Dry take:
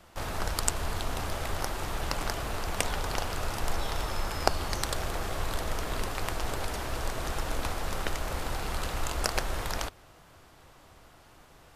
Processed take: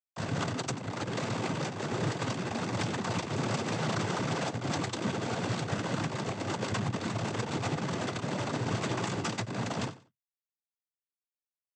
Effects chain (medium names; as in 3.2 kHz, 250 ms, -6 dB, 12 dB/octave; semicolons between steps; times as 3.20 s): high-pass 690 Hz 12 dB/octave; treble shelf 4.5 kHz +10 dB; in parallel at +2 dB: compression 10:1, threshold -43 dBFS, peak gain reduction 29 dB; on the sum: Schmitt trigger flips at -26 dBFS; flange 0.25 Hz, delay 6 ms, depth 6.5 ms, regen -45%; noise-vocoded speech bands 16; on a send: feedback delay 92 ms, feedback 23%, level -17 dB; on the sum: trim +7.5 dB